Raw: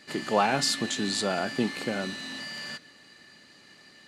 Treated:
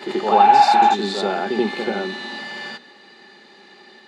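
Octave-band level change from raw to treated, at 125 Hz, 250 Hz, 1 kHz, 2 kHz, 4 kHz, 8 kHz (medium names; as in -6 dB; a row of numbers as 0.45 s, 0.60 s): +0.5 dB, +5.0 dB, +17.5 dB, +5.5 dB, +2.5 dB, -6.5 dB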